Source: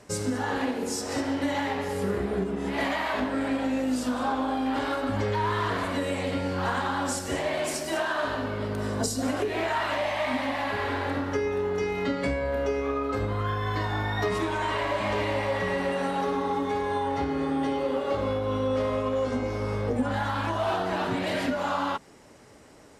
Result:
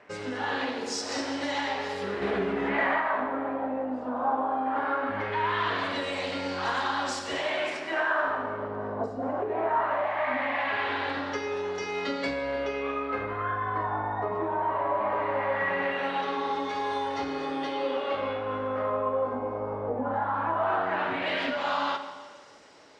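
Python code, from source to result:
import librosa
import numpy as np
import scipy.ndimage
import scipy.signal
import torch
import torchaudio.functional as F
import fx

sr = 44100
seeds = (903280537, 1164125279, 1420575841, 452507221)

y = fx.low_shelf(x, sr, hz=120.0, db=-11.0)
y = fx.filter_lfo_lowpass(y, sr, shape='sine', hz=0.19, low_hz=870.0, high_hz=5400.0, q=1.5)
y = fx.low_shelf(y, sr, hz=280.0, db=-8.5)
y = fx.hum_notches(y, sr, base_hz=60, count=7)
y = fx.rev_schroeder(y, sr, rt60_s=1.7, comb_ms=29, drr_db=8.5)
y = fx.env_flatten(y, sr, amount_pct=50, at=(2.21, 2.99), fade=0.02)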